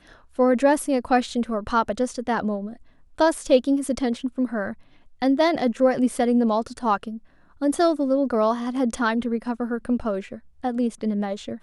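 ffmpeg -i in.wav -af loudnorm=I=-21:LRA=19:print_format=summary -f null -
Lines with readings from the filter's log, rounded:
Input Integrated:    -23.7 LUFS
Input True Peak:      -6.0 dBTP
Input LRA:             3.4 LU
Input Threshold:     -34.1 LUFS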